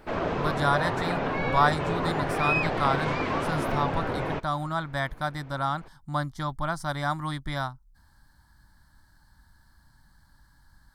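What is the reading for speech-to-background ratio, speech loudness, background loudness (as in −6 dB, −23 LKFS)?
−1.5 dB, −30.0 LKFS, −28.5 LKFS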